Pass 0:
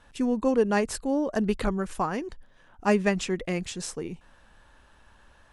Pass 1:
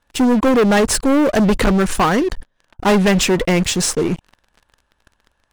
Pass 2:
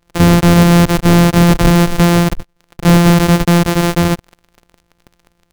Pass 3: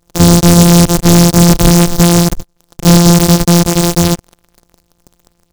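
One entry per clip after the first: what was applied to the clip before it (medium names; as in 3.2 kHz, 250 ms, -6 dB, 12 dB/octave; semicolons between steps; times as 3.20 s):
waveshaping leveller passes 5
sorted samples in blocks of 256 samples; trim +5.5 dB
delay time shaken by noise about 5.6 kHz, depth 0.14 ms; trim +2.5 dB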